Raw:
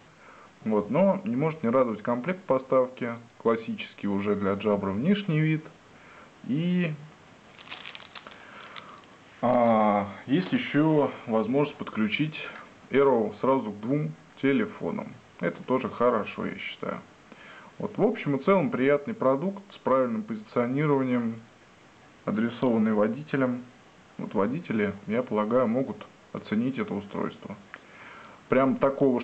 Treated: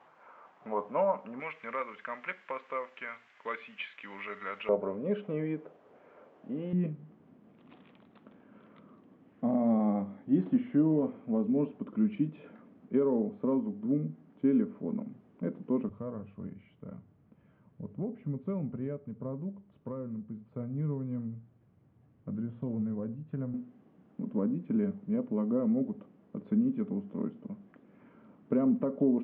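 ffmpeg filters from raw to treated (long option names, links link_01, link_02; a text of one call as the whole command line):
ffmpeg -i in.wav -af "asetnsamples=nb_out_samples=441:pad=0,asendcmd='1.4 bandpass f 2000;4.69 bandpass f 510;6.73 bandpass f 240;15.89 bandpass f 110;23.54 bandpass f 230',bandpass=frequency=880:width_type=q:width=1.7:csg=0" out.wav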